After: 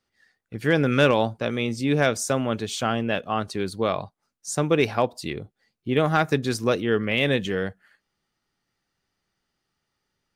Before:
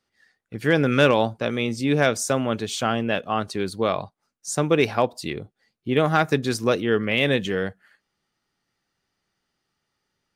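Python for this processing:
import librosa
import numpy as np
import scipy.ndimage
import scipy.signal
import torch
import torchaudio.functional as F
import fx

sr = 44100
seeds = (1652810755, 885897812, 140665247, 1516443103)

y = fx.low_shelf(x, sr, hz=71.0, db=6.0)
y = F.gain(torch.from_numpy(y), -1.5).numpy()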